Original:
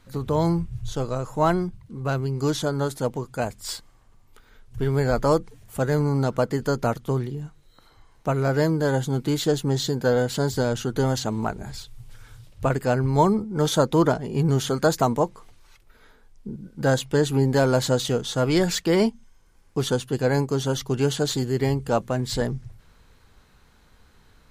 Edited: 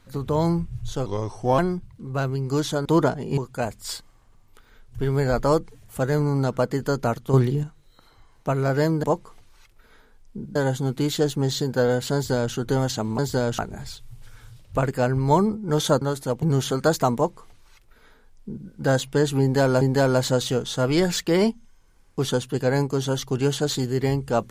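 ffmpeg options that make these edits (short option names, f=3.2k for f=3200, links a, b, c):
-filter_complex "[0:a]asplit=14[a][b][c][d][e][f][g][h][i][j][k][l][m][n];[a]atrim=end=1.064[o];[b]atrim=start=1.06:end=1.49,asetpts=PTS-STARTPTS,asetrate=36162,aresample=44100[p];[c]atrim=start=1.486:end=2.762[q];[d]atrim=start=13.888:end=14.412[r];[e]atrim=start=3.168:end=7.132[s];[f]atrim=start=7.128:end=7.432,asetpts=PTS-STARTPTS,volume=8dB[t];[g]atrim=start=7.428:end=8.832[u];[h]atrim=start=15.138:end=16.662[v];[i]atrim=start=8.828:end=11.462[w];[j]atrim=start=10.418:end=10.822[x];[k]atrim=start=11.458:end=13.892[y];[l]atrim=start=2.758:end=3.172[z];[m]atrim=start=14.408:end=17.802[aa];[n]atrim=start=17.398[ab];[o][p]acrossfade=d=0.004:c1=hsin:c2=hsin[ac];[ac][q]acrossfade=d=0.004:c1=hsin:c2=hsin[ad];[ad][r]acrossfade=d=0.004:c1=hsin:c2=hsin[ae];[ae][s]acrossfade=d=0.004:c1=hsin:c2=hsin[af];[af][t]acrossfade=d=0.004:c1=hsin:c2=hsin[ag];[ag][u]acrossfade=d=0.004:c1=hsin:c2=hsin[ah];[ah][v]acrossfade=d=0.004:c1=hsin:c2=hsin[ai];[ai][w]acrossfade=d=0.004:c1=hsin:c2=hsin[aj];[aj][x]acrossfade=d=0.004:c1=hsin:c2=hsin[ak];[ak][y]acrossfade=d=0.004:c1=hsin:c2=hsin[al];[al][z]acrossfade=d=0.004:c1=hsin:c2=hsin[am];[am][aa]acrossfade=d=0.004:c1=hsin:c2=hsin[an];[an][ab]acrossfade=d=0.004:c1=hsin:c2=hsin"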